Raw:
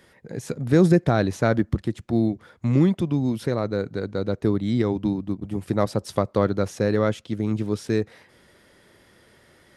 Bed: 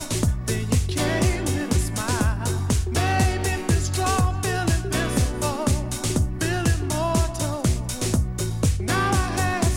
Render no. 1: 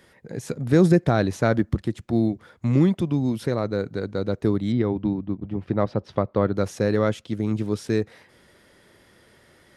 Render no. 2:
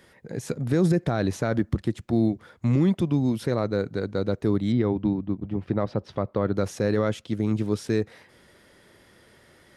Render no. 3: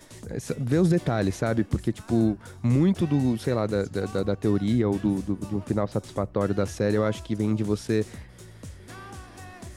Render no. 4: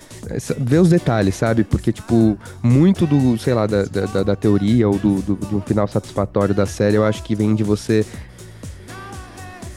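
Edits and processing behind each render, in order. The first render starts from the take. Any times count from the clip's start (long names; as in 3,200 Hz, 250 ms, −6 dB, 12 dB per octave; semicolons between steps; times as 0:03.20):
0:04.72–0:06.56: high-frequency loss of the air 260 metres
brickwall limiter −12.5 dBFS, peak gain reduction 7 dB
mix in bed −20.5 dB
level +8 dB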